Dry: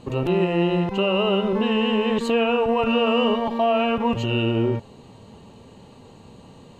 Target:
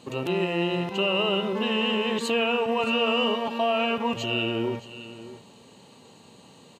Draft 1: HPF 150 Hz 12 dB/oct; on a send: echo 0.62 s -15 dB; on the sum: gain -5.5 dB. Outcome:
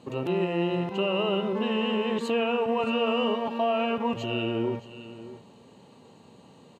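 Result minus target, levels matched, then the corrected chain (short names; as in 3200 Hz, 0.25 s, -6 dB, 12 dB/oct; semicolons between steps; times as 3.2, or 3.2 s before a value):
4000 Hz band -4.5 dB
HPF 150 Hz 12 dB/oct; high shelf 2100 Hz +10 dB; on a send: echo 0.62 s -15 dB; on the sum: gain -5.5 dB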